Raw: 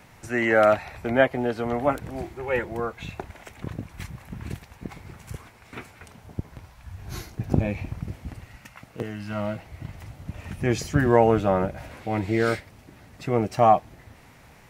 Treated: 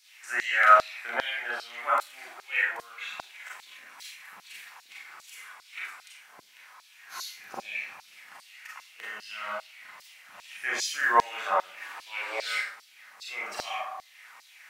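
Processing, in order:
0:11.73–0:12.42: frequency shifter +210 Hz
four-comb reverb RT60 0.45 s, combs from 30 ms, DRR −4 dB
auto-filter high-pass saw down 2.5 Hz 970–4,700 Hz
level −4.5 dB

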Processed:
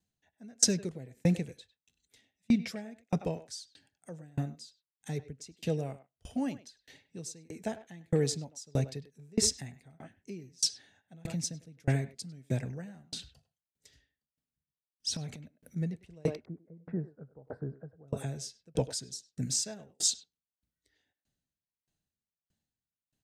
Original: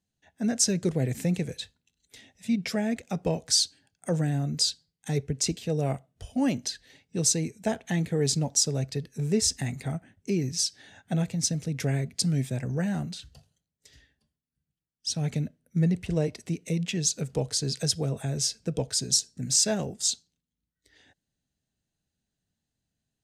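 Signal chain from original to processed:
0:04.15–0:05.36: duck −13.5 dB, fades 0.41 s equal-power
0:15.09–0:15.82: transient designer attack −4 dB, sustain +11 dB
0:16.35–0:18.08: elliptic low-pass filter 1,500 Hz, stop band 50 dB
far-end echo of a speakerphone 100 ms, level −9 dB
tremolo with a ramp in dB decaying 1.6 Hz, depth 33 dB
level +2 dB

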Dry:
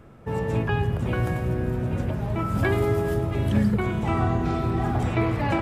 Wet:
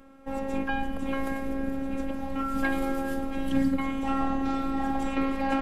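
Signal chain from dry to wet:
high-pass filter 45 Hz
phases set to zero 270 Hz

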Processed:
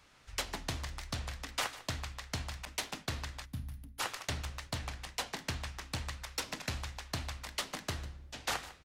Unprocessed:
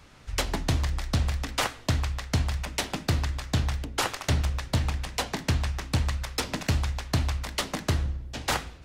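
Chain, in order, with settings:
0:03.45–0:04.00: gain on a spectral selection 280–9,300 Hz −18 dB
0:02.65–0:05.33: downward expander −34 dBFS
low-shelf EQ 500 Hz −9 dB
single-tap delay 149 ms −16 dB
wow of a warped record 33 1/3 rpm, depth 100 cents
level −6.5 dB

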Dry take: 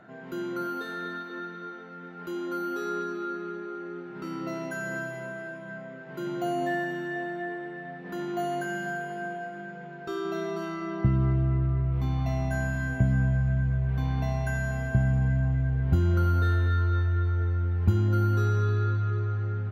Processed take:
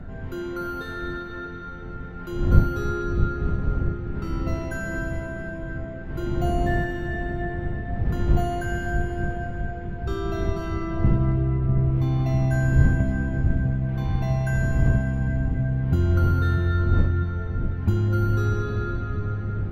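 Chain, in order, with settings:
wind on the microphone 100 Hz −29 dBFS
delay with a low-pass on its return 649 ms, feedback 69%, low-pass 530 Hz, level −6 dB
level +1.5 dB

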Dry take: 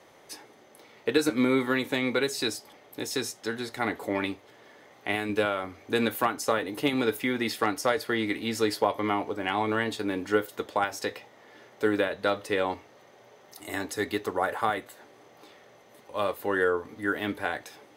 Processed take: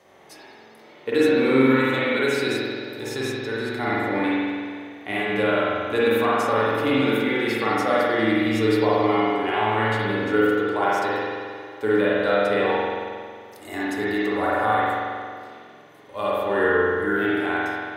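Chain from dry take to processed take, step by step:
spring reverb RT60 2 s, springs 45 ms, chirp 55 ms, DRR −7.5 dB
0:02.48–0:03.02: surface crackle 29 per second → 120 per second −46 dBFS
harmonic and percussive parts rebalanced percussive −6 dB

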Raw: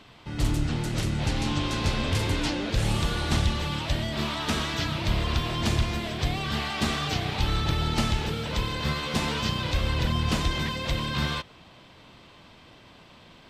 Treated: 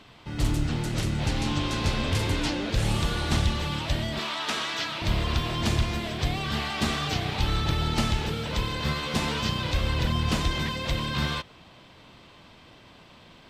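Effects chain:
0:04.19–0:05.02: meter weighting curve A
floating-point word with a short mantissa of 6 bits

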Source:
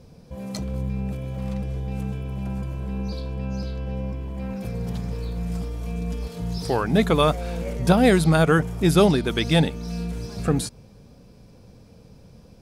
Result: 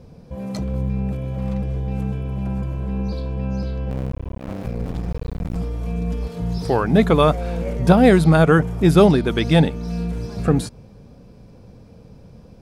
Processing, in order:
0:03.90–0:05.56: sub-harmonics by changed cycles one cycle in 2, muted
high-shelf EQ 2,800 Hz −9 dB
level +4.5 dB

